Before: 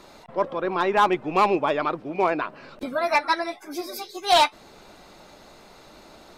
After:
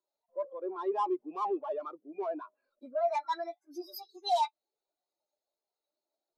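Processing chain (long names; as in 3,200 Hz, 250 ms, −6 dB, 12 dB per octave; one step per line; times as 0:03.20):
soft clipping −26 dBFS, distortion −5 dB
bass and treble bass −10 dB, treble +11 dB
every bin expanded away from the loudest bin 2.5 to 1
level −7.5 dB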